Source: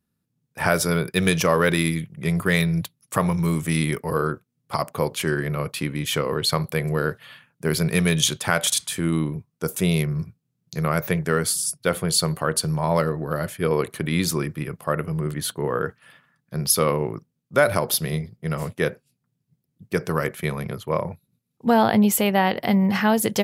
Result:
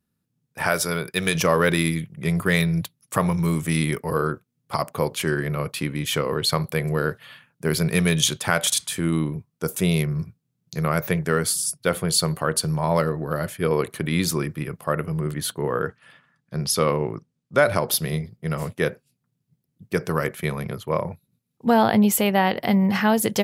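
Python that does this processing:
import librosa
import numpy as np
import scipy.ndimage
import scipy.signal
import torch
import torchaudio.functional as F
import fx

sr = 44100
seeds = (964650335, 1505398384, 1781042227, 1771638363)

y = fx.low_shelf(x, sr, hz=440.0, db=-7.0, at=(0.62, 1.35))
y = fx.lowpass(y, sr, hz=8600.0, slope=12, at=(15.88, 17.91))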